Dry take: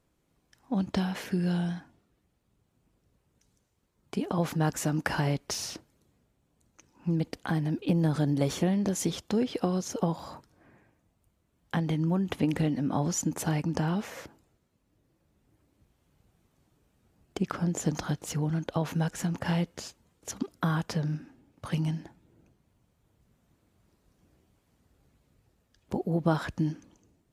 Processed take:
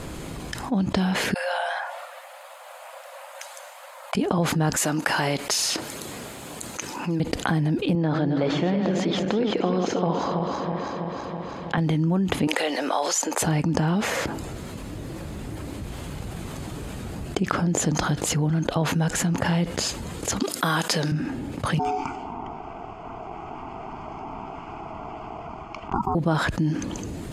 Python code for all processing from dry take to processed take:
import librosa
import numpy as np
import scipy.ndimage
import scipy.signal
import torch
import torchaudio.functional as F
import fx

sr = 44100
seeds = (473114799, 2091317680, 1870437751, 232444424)

y = fx.chain(x, sr, fx.brickwall_highpass(low_hz=510.0),
    fx.peak_eq(hz=5800.0, db=-10.5, octaves=2.0), at=(1.34, 4.15))
y = fx.chain(y, sr, fx.highpass(hz=600.0, slope=6),
    fx.high_shelf(hz=10000.0, db=6.0), at=(4.76, 7.2))
y = fx.chain(y, sr, fx.reverse_delay_fb(ms=163, feedback_pct=64, wet_db=-7.0),
    fx.highpass(hz=320.0, slope=6),
    fx.air_absorb(metres=230.0), at=(7.95, 11.78))
y = fx.chain(y, sr, fx.highpass(hz=500.0, slope=24),
    fx.band_squash(depth_pct=40), at=(12.47, 13.42))
y = fx.chain(y, sr, fx.highpass(hz=260.0, slope=12),
    fx.high_shelf(hz=2800.0, db=12.0), at=(20.4, 21.12))
y = fx.chain(y, sr, fx.ring_mod(carrier_hz=580.0),
    fx.fixed_phaser(hz=2600.0, stages=8),
    fx.env_lowpass(base_hz=2000.0, full_db=-39.5), at=(21.79, 26.15))
y = scipy.signal.sosfilt(scipy.signal.butter(2, 11000.0, 'lowpass', fs=sr, output='sos'), y)
y = fx.notch(y, sr, hz=5700.0, q=10.0)
y = fx.env_flatten(y, sr, amount_pct=70)
y = y * librosa.db_to_amplitude(1.5)